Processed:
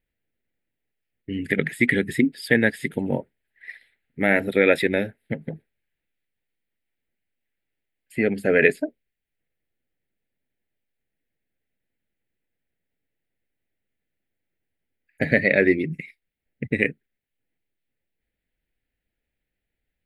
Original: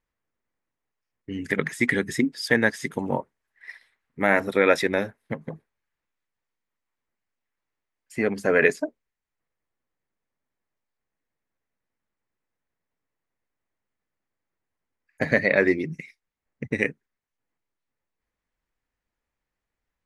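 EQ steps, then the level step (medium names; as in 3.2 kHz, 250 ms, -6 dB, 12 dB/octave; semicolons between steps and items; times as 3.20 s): static phaser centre 2.6 kHz, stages 4; +4.0 dB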